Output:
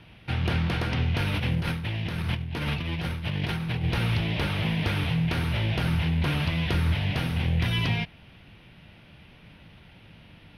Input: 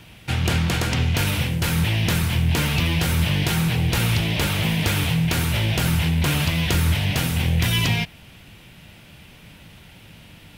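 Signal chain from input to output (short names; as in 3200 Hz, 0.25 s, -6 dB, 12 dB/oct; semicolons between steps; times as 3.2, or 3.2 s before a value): 1.34–3.84 negative-ratio compressor -23 dBFS, ratio -0.5; running mean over 6 samples; gain -4.5 dB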